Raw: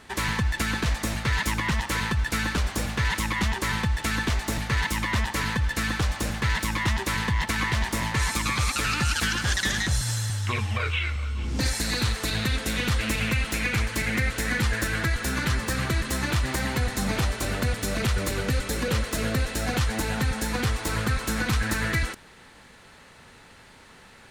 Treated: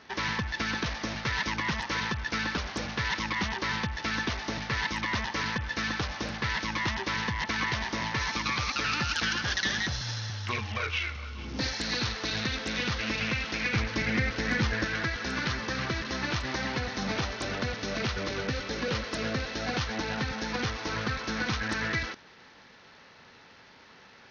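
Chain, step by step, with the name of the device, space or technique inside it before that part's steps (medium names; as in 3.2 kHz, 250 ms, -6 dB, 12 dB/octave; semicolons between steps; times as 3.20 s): 13.73–14.85 s: bass shelf 430 Hz +6 dB; Bluetooth headset (high-pass 180 Hz 6 dB/octave; resampled via 16 kHz; trim -2.5 dB; SBC 64 kbps 48 kHz)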